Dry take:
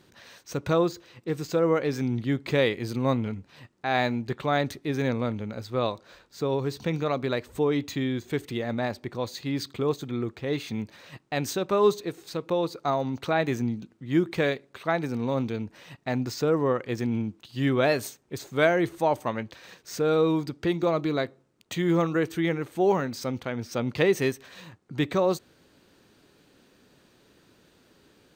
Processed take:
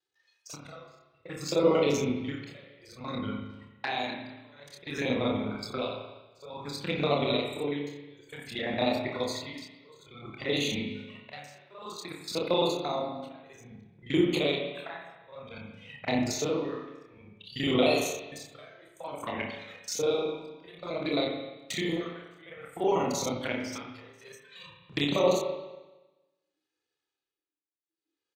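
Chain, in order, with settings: time reversed locally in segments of 38 ms; spectral noise reduction 21 dB; gate -53 dBFS, range -9 dB; tilt EQ +3.5 dB/octave; peak limiter -18 dBFS, peak gain reduction 9.5 dB; tremolo 0.56 Hz, depth 98%; touch-sensitive flanger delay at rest 2.4 ms, full sweep at -30.5 dBFS; distance through air 51 m; doubling 28 ms -4.5 dB; reverberation RT60 1.1 s, pre-delay 48 ms, DRR 3 dB; trim +4.5 dB

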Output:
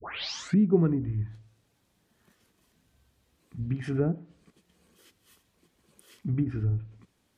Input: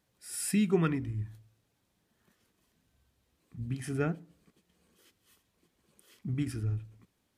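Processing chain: tape start-up on the opening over 0.59 s; low-pass that closes with the level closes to 630 Hz, closed at -26.5 dBFS; trim +5 dB

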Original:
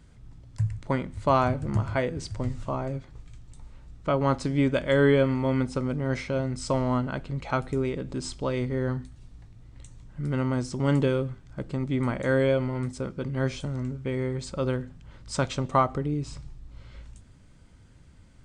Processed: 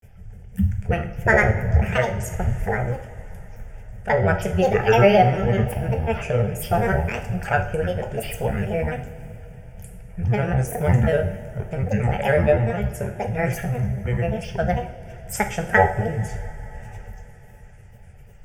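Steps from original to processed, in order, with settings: granulator, spray 16 ms, pitch spread up and down by 12 st; static phaser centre 1.1 kHz, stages 6; two-slope reverb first 0.52 s, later 4.5 s, from -18 dB, DRR 5 dB; trim +9 dB

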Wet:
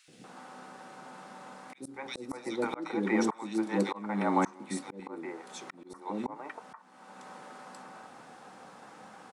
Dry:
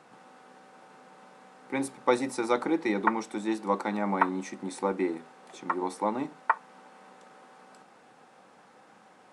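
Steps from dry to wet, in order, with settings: three bands offset in time highs, lows, mids 80/240 ms, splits 460/2400 Hz; slow attack 568 ms; trim +7 dB

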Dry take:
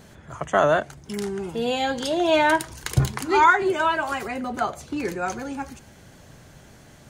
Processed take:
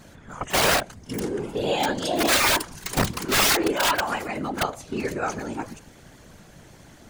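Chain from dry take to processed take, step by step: integer overflow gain 14.5 dB; pre-echo 33 ms -17 dB; whisper effect

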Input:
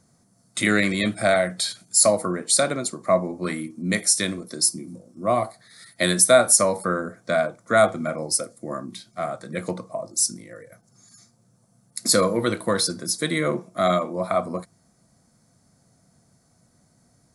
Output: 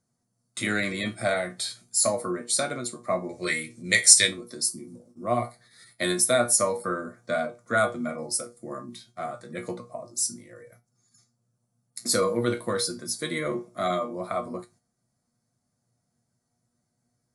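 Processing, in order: 3.29–4.28 s: graphic EQ 125/250/500/1000/2000/4000/8000 Hz +8/-11/+8/-6/+11/+8/+11 dB; gate -50 dBFS, range -10 dB; feedback comb 120 Hz, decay 0.19 s, harmonics all, mix 80%; trim +1 dB

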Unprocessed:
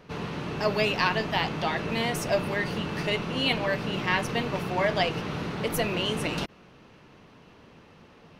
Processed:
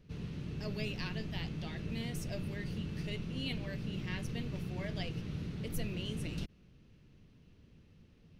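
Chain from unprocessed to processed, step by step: amplifier tone stack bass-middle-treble 10-0-1; trim +8.5 dB

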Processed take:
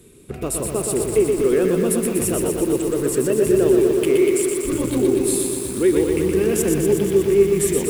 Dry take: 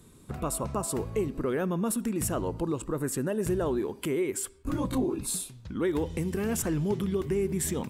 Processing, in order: fifteen-band graphic EQ 400 Hz +11 dB, 1 kHz -7 dB, 2.5 kHz +8 dB, 10 kHz +7 dB; bit-crushed delay 121 ms, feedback 80%, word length 7-bit, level -4 dB; trim +2.5 dB

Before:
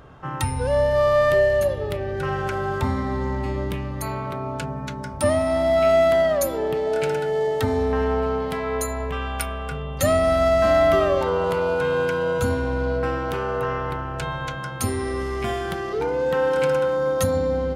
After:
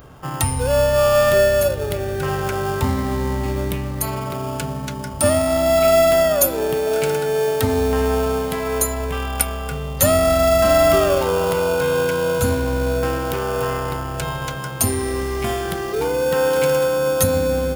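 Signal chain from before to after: treble shelf 12 kHz +10.5 dB; in parallel at -9 dB: sample-and-hold 22×; on the sum: treble shelf 5.6 kHz +8 dB; trim +1 dB

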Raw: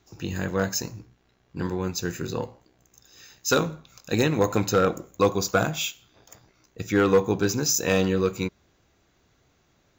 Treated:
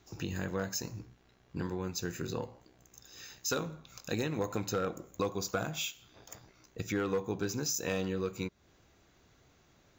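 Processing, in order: compression 2.5:1, threshold -36 dBFS, peak gain reduction 14 dB

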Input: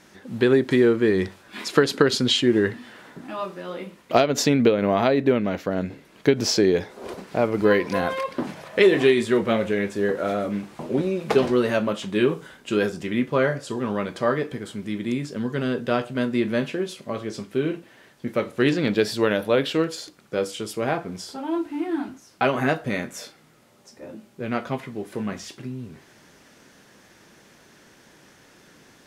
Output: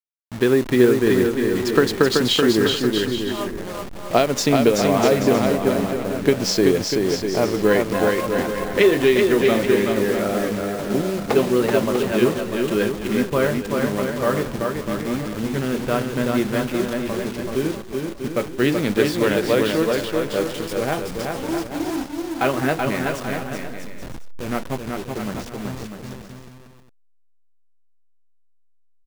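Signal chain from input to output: send-on-delta sampling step -29 dBFS; bouncing-ball echo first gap 380 ms, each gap 0.7×, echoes 5; trim +1 dB

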